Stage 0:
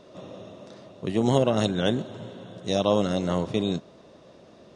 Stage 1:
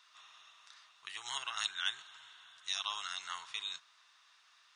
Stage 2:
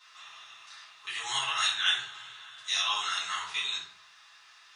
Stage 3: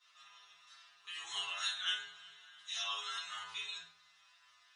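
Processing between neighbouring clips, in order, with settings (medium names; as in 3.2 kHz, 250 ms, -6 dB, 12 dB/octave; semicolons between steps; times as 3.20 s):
inverse Chebyshev high-pass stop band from 600 Hz, stop band 40 dB; trim -2.5 dB
simulated room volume 57 m³, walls mixed, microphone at 2.1 m
inharmonic resonator 82 Hz, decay 0.45 s, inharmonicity 0.002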